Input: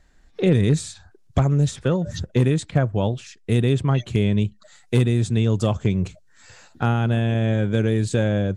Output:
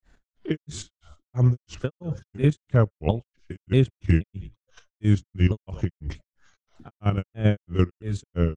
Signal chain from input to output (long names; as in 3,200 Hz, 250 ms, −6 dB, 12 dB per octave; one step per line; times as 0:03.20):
pitch shifter swept by a sawtooth −4.5 semitones, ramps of 610 ms
bass and treble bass +1 dB, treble −4 dB
output level in coarse steps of 10 dB
on a send: echo with shifted repeats 110 ms, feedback 34%, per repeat −44 Hz, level −23.5 dB
on the sum: granular cloud 244 ms, grains 3 per second, pitch spread up and down by 0 semitones
level +5 dB